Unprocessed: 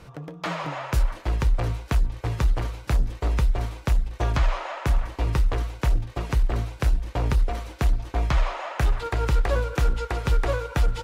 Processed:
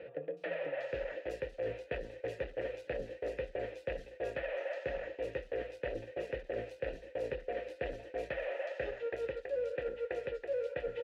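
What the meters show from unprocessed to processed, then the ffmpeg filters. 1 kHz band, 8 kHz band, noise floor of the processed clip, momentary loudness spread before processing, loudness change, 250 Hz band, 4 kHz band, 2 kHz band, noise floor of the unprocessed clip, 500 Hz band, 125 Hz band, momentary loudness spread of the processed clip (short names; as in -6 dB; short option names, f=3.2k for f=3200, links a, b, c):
-17.5 dB, n/a, -56 dBFS, 4 LU, -13.0 dB, -15.5 dB, -16.0 dB, -9.0 dB, -45 dBFS, -2.0 dB, -27.5 dB, 4 LU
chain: -filter_complex "[0:a]asplit=3[a][b][c];[a]bandpass=f=530:t=q:w=8,volume=0dB[d];[b]bandpass=f=1.84k:t=q:w=8,volume=-6dB[e];[c]bandpass=f=2.48k:t=q:w=8,volume=-9dB[f];[d][e][f]amix=inputs=3:normalize=0,equalizer=f=410:t=o:w=0.97:g=4,areverse,acompressor=threshold=-46dB:ratio=6,areverse,acrossover=split=3800[g][h];[h]adelay=370[i];[g][i]amix=inputs=2:normalize=0,volume=11dB"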